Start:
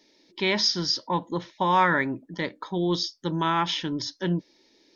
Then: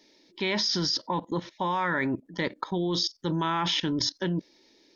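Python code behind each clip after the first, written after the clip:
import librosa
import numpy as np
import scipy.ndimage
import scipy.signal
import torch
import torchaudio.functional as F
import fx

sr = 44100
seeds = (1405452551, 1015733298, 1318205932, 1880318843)

y = fx.level_steps(x, sr, step_db=17)
y = F.gain(torch.from_numpy(y), 7.0).numpy()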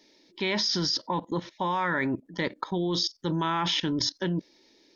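y = x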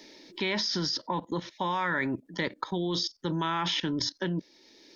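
y = fx.peak_eq(x, sr, hz=1600.0, db=2.0, octaves=0.77)
y = fx.band_squash(y, sr, depth_pct=40)
y = F.gain(torch.from_numpy(y), -2.5).numpy()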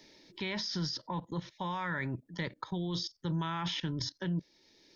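y = fx.low_shelf_res(x, sr, hz=190.0, db=8.0, q=1.5)
y = F.gain(torch.from_numpy(y), -7.0).numpy()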